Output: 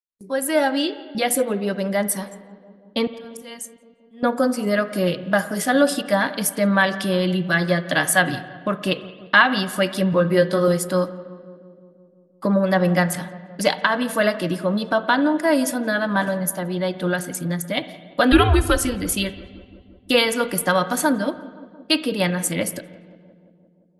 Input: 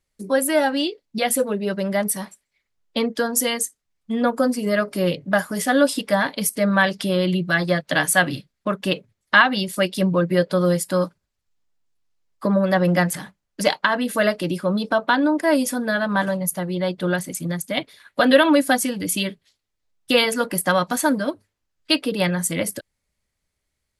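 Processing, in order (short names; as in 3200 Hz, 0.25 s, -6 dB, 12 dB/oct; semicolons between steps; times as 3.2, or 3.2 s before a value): opening faded in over 0.60 s; gate with hold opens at -35 dBFS; 3.07–4.23 auto swell 0.764 s; 10.11–10.68 doubler 19 ms -4.5 dB; 18.32–18.85 frequency shift -220 Hz; darkening echo 0.173 s, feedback 72%, low-pass 1500 Hz, level -18.5 dB; spring tank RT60 1.4 s, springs 35/54/58 ms, chirp 35 ms, DRR 13.5 dB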